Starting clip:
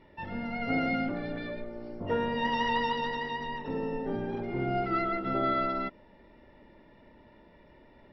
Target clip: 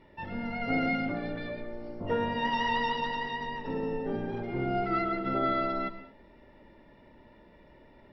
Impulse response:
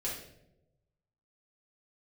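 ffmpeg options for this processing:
-filter_complex "[0:a]asplit=2[s0][s1];[1:a]atrim=start_sample=2205,atrim=end_sample=6174,adelay=111[s2];[s1][s2]afir=irnorm=-1:irlink=0,volume=0.2[s3];[s0][s3]amix=inputs=2:normalize=0"

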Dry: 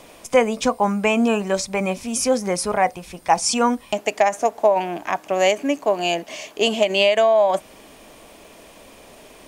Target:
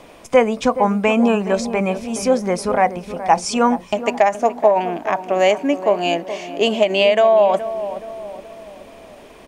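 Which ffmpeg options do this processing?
-filter_complex "[0:a]highshelf=f=4400:g=-11,asplit=2[s0][s1];[s1]adelay=422,lowpass=f=1100:p=1,volume=0.282,asplit=2[s2][s3];[s3]adelay=422,lowpass=f=1100:p=1,volume=0.51,asplit=2[s4][s5];[s5]adelay=422,lowpass=f=1100:p=1,volume=0.51,asplit=2[s6][s7];[s7]adelay=422,lowpass=f=1100:p=1,volume=0.51,asplit=2[s8][s9];[s9]adelay=422,lowpass=f=1100:p=1,volume=0.51[s10];[s0][s2][s4][s6][s8][s10]amix=inputs=6:normalize=0,volume=1.41"

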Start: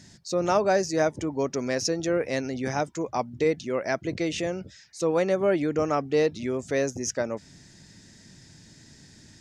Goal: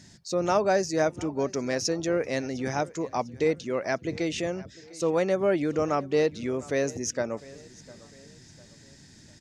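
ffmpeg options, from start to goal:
-af "aecho=1:1:702|1404|2106:0.0891|0.0374|0.0157,volume=0.891"

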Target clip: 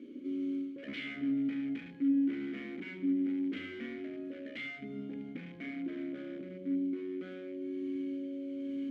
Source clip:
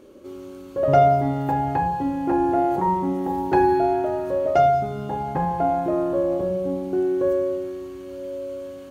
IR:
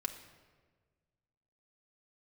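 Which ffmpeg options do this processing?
-filter_complex "[0:a]aeval=exprs='0.106*(abs(mod(val(0)/0.106+3,4)-2)-1)':c=same,highpass=70,areverse,acompressor=threshold=0.02:ratio=12,areverse,asplit=3[s0][s1][s2];[s0]bandpass=f=270:t=q:w=8,volume=1[s3];[s1]bandpass=f=2290:t=q:w=8,volume=0.501[s4];[s2]bandpass=f=3010:t=q:w=8,volume=0.355[s5];[s3][s4][s5]amix=inputs=3:normalize=0,asplit=2[s6][s7];[1:a]atrim=start_sample=2205,lowpass=2100[s8];[s7][s8]afir=irnorm=-1:irlink=0,volume=0.531[s9];[s6][s9]amix=inputs=2:normalize=0,volume=2.37"

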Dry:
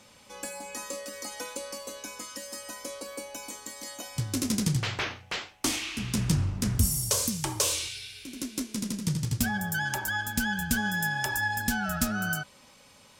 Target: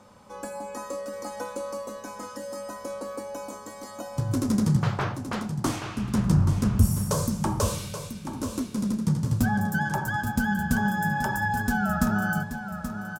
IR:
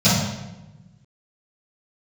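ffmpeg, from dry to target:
-filter_complex "[0:a]highshelf=f=1700:t=q:w=1.5:g=-10.5,aecho=1:1:829|1658|2487:0.335|0.0871|0.0226,asplit=2[s0][s1];[1:a]atrim=start_sample=2205[s2];[s1][s2]afir=irnorm=-1:irlink=0,volume=0.0112[s3];[s0][s3]amix=inputs=2:normalize=0,volume=1.58"

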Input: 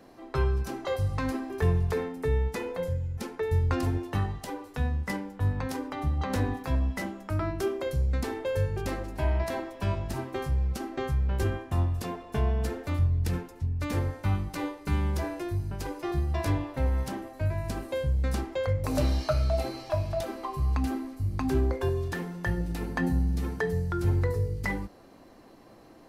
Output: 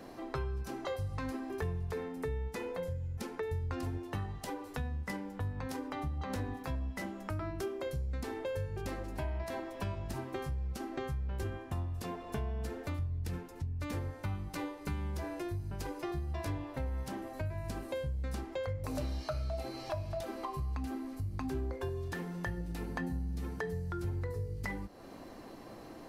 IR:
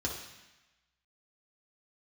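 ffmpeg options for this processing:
-af "acompressor=threshold=0.00708:ratio=3,volume=1.58"

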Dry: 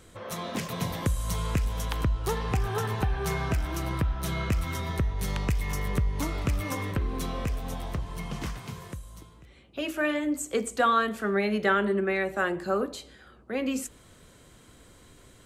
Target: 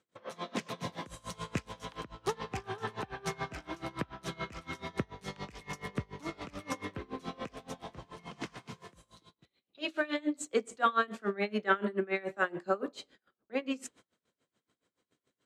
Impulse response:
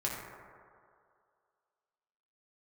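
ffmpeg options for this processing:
-filter_complex "[0:a]asettb=1/sr,asplit=3[s0][s1][s2];[s0]atrim=end=9.114[s3];[s1]atrim=start=9.11:end=10.48,asetpts=PTS-STARTPTS,afade=t=in:d=0.004:c=qsin,afade=t=out:st=1.366:d=0.004:c=qsin,equalizer=f=4000:t=o:w=0.36:g=12[s4];[s2]atrim=start=10.476[s5];[s3][s4]acrossfade=d=0.004:c1=hsin:c2=qsin[s6];[s6][s5]acrossfade=d=0.004:c1=qsin:c2=hsin,agate=range=0.112:threshold=0.00355:ratio=16:detection=peak,highpass=190,lowpass=6700,aeval=exprs='val(0)*pow(10,-23*(0.5-0.5*cos(2*PI*7*n/s))/20)':c=same"

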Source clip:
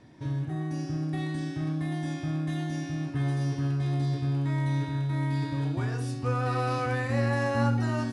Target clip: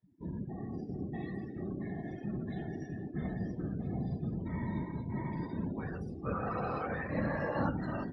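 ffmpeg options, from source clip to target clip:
-af "afftfilt=real='hypot(re,im)*cos(2*PI*random(0))':imag='hypot(re,im)*sin(2*PI*random(1))':win_size=512:overlap=0.75,afftdn=nr=27:nf=-46,highpass=f=130:p=1,highshelf=f=5700:g=-7.5"

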